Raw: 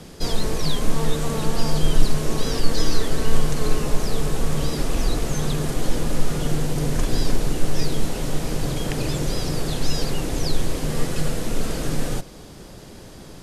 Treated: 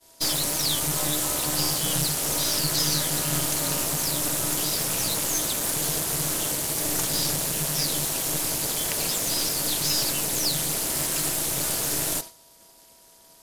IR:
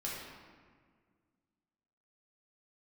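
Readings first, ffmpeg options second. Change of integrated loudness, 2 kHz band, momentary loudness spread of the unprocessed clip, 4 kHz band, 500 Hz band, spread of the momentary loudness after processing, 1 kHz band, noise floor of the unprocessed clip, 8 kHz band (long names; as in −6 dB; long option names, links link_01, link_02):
+2.5 dB, +1.0 dB, 3 LU, +5.0 dB, −6.0 dB, 2 LU, −1.5 dB, −41 dBFS, +10.5 dB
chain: -af "aemphasis=mode=production:type=riaa,aeval=exprs='val(0)+0.00562*sin(2*PI*810*n/s)':channel_layout=same,aeval=exprs='val(0)*sin(2*PI*150*n/s)':channel_layout=same,agate=range=-33dB:threshold=-31dB:ratio=3:detection=peak,aeval=exprs='(tanh(10*val(0)+0.55)-tanh(0.55))/10':channel_layout=same,volume=4dB"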